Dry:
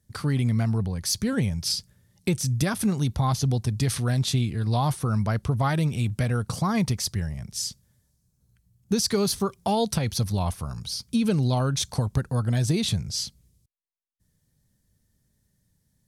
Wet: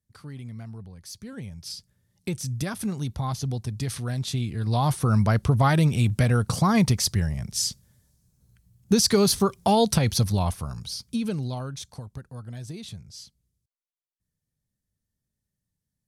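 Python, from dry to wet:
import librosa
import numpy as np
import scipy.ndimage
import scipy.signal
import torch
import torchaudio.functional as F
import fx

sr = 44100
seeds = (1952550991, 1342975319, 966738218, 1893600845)

y = fx.gain(x, sr, db=fx.line((1.16, -15.0), (2.35, -5.0), (4.25, -5.0), (5.13, 4.0), (10.1, 4.0), (11.18, -4.0), (12.06, -14.0)))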